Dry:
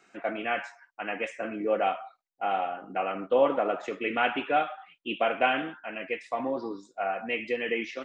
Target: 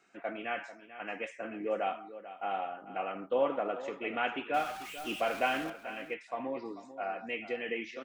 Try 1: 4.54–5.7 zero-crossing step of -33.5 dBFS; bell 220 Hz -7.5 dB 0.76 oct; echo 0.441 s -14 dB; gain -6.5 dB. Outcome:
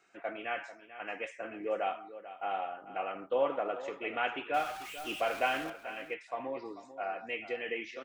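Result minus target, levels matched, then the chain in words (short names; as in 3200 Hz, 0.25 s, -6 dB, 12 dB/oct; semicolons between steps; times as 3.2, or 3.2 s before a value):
250 Hz band -3.5 dB
4.54–5.7 zero-crossing step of -33.5 dBFS; echo 0.441 s -14 dB; gain -6.5 dB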